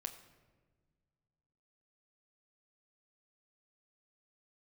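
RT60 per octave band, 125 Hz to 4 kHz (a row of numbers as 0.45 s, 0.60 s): 2.6 s, 2.3 s, 1.7 s, 1.2 s, 1.1 s, 0.80 s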